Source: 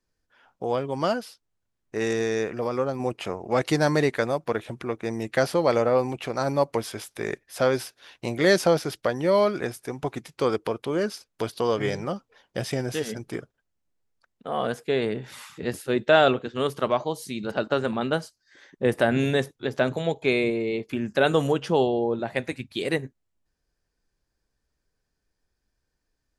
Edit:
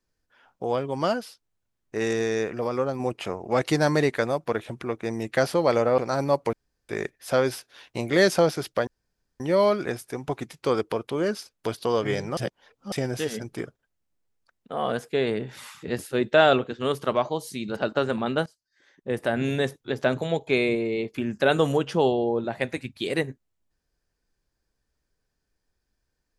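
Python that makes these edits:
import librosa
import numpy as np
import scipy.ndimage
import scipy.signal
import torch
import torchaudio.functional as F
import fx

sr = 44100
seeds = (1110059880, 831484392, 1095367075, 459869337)

y = fx.edit(x, sr, fx.cut(start_s=5.98, length_s=0.28),
    fx.room_tone_fill(start_s=6.81, length_s=0.36),
    fx.insert_room_tone(at_s=9.15, length_s=0.53),
    fx.reverse_span(start_s=12.12, length_s=0.55),
    fx.fade_in_from(start_s=18.21, length_s=1.46, floor_db=-17.0), tone=tone)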